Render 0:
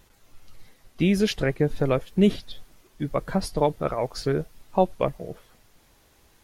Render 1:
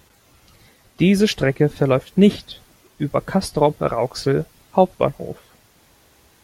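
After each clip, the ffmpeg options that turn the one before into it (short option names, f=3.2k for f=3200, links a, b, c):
-af "highpass=58,volume=6dB"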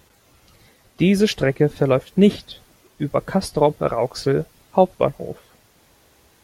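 -af "equalizer=f=500:w=1.5:g=2,volume=-1.5dB"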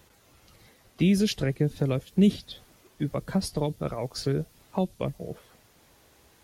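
-filter_complex "[0:a]acrossover=split=280|3000[a][b][c];[b]acompressor=threshold=-31dB:ratio=3[d];[a][d][c]amix=inputs=3:normalize=0,volume=-3.5dB"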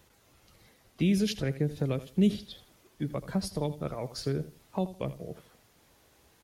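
-af "aecho=1:1:81|162|243:0.178|0.0462|0.012,volume=-4dB"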